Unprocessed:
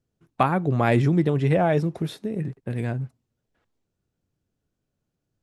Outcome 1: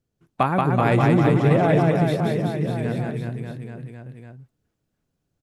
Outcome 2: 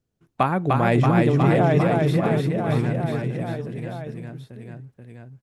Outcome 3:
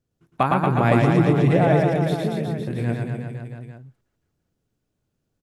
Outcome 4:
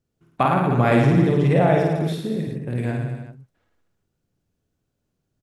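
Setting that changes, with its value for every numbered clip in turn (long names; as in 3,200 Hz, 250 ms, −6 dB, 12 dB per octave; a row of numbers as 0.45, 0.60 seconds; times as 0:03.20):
reverse bouncing-ball delay, first gap: 180, 300, 110, 50 milliseconds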